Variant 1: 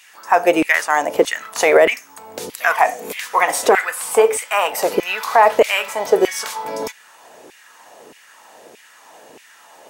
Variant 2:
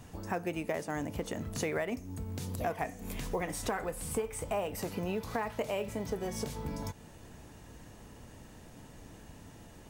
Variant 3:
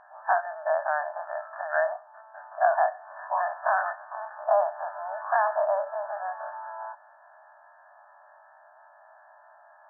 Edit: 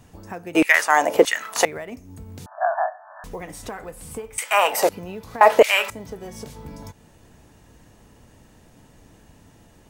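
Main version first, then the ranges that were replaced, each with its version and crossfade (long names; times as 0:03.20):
2
0:00.55–0:01.65: punch in from 1
0:02.46–0:03.24: punch in from 3
0:04.38–0:04.89: punch in from 1
0:05.41–0:05.90: punch in from 1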